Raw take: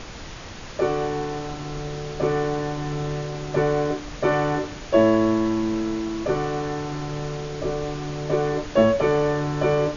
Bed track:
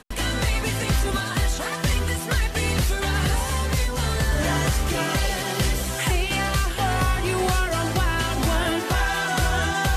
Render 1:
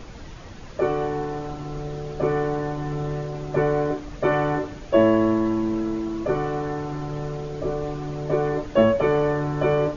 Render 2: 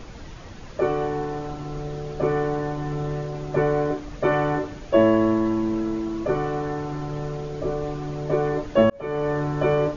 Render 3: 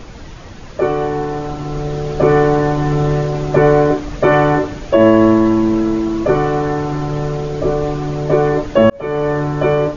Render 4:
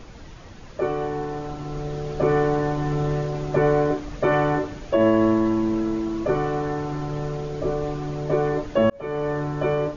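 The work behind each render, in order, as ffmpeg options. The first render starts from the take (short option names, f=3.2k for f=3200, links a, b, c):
-af "afftdn=nr=9:nf=-37"
-filter_complex "[0:a]asplit=2[a][b];[a]atrim=end=8.9,asetpts=PTS-STARTPTS,afade=t=out:st=8.896:d=0.004:c=hsin[c];[b]atrim=start=8.9,asetpts=PTS-STARTPTS,afade=t=in:d=0.49[d];[c][d]concat=n=2:v=0:a=1"
-af "dynaudnorm=f=780:g=5:m=11.5dB,alimiter=level_in=6dB:limit=-1dB:release=50:level=0:latency=1"
-af "volume=-8.5dB"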